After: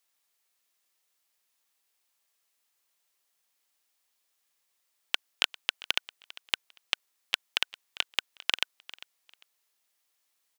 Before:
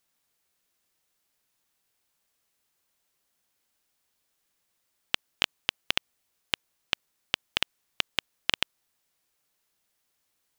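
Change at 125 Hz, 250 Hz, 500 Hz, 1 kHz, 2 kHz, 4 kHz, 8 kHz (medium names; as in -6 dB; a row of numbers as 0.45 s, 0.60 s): under -15 dB, -9.5 dB, -5.0 dB, -2.0 dB, -0.5 dB, 0.0 dB, 0.0 dB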